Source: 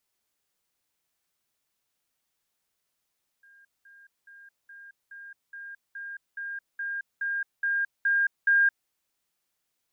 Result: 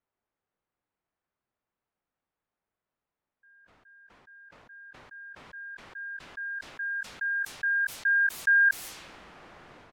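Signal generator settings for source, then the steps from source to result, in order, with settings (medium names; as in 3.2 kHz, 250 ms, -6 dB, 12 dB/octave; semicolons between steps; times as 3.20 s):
level ladder 1.61 kHz -53.5 dBFS, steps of 3 dB, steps 13, 0.22 s 0.20 s
level-controlled noise filter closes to 1.4 kHz, open at -29 dBFS; doubling 20 ms -14 dB; decay stretcher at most 29 dB/s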